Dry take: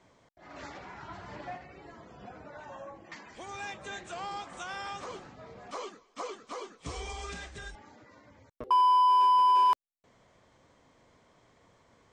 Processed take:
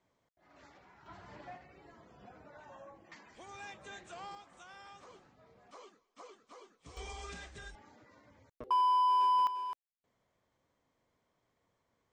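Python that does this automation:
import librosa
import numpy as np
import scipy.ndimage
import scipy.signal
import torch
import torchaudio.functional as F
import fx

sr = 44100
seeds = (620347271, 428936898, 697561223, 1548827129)

y = fx.gain(x, sr, db=fx.steps((0.0, -15.0), (1.06, -8.0), (4.35, -14.5), (6.97, -5.5), (9.47, -16.0)))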